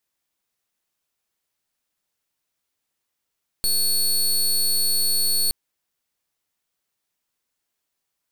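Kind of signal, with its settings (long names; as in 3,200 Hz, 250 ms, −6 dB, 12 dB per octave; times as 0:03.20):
pulse wave 4,400 Hz, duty 19% −20 dBFS 1.87 s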